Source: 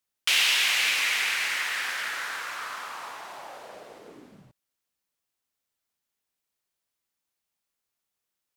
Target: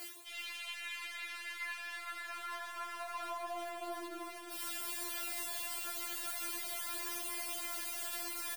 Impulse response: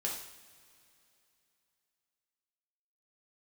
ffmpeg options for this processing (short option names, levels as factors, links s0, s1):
-filter_complex "[0:a]aeval=exprs='val(0)+0.5*0.015*sgn(val(0))':c=same,highpass=340,aemphasis=mode=reproduction:type=50kf,areverse,acompressor=threshold=0.00794:ratio=6,areverse,alimiter=level_in=7.94:limit=0.0631:level=0:latency=1:release=113,volume=0.126,tremolo=f=43:d=0.71,flanger=delay=17:depth=7.4:speed=0.27,aeval=exprs='0.0075*(cos(1*acos(clip(val(0)/0.0075,-1,1)))-cos(1*PI/2))+0.000299*(cos(6*acos(clip(val(0)/0.0075,-1,1)))-cos(6*PI/2))+0.00015*(cos(8*acos(clip(val(0)/0.0075,-1,1)))-cos(8*PI/2))':c=same,aexciter=amount=2.3:drive=7.2:freq=8700,asplit=2[s0][s1];[s1]aecho=0:1:387:0.282[s2];[s0][s2]amix=inputs=2:normalize=0,afftfilt=real='re*4*eq(mod(b,16),0)':imag='im*4*eq(mod(b,16),0)':win_size=2048:overlap=0.75,volume=5.31"